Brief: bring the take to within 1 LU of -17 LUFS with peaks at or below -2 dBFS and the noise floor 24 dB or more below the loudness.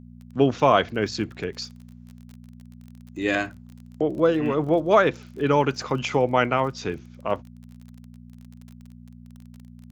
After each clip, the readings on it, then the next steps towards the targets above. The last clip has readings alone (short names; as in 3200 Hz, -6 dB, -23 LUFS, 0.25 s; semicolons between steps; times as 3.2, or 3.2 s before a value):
ticks 28/s; hum 60 Hz; harmonics up to 240 Hz; hum level -42 dBFS; loudness -23.5 LUFS; peak -4.5 dBFS; loudness target -17.0 LUFS
-> de-click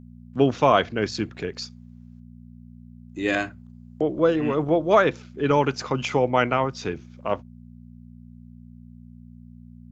ticks 0/s; hum 60 Hz; harmonics up to 240 Hz; hum level -42 dBFS
-> de-hum 60 Hz, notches 4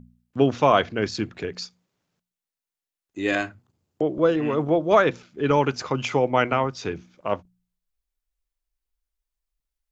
hum none; loudness -23.5 LUFS; peak -4.5 dBFS; loudness target -17.0 LUFS
-> gain +6.5 dB; limiter -2 dBFS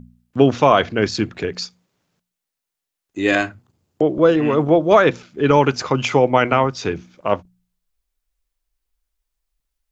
loudness -17.5 LUFS; peak -2.0 dBFS; noise floor -83 dBFS